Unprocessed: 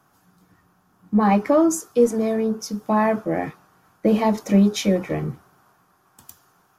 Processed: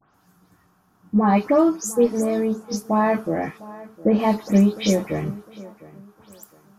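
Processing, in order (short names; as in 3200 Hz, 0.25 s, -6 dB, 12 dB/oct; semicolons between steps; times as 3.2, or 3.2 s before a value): spectral delay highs late, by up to 0.139 s; tape echo 0.706 s, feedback 35%, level -18 dB, low-pass 2100 Hz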